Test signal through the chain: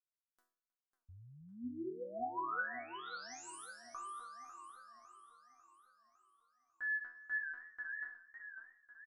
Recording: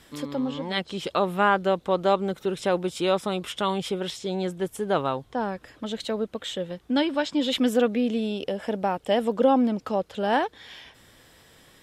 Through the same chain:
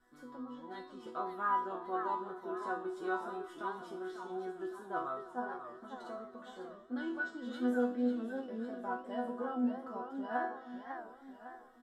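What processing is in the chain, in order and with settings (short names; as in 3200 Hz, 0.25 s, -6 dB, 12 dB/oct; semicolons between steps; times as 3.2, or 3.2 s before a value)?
resonant high shelf 1900 Hz -8.5 dB, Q 3; vibrato 2.5 Hz 11 cents; resonator bank B3 sus4, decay 0.48 s; on a send: feedback echo 0.314 s, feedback 44%, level -22 dB; on the sum: warbling echo 0.551 s, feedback 50%, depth 170 cents, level -9 dB; gain +5 dB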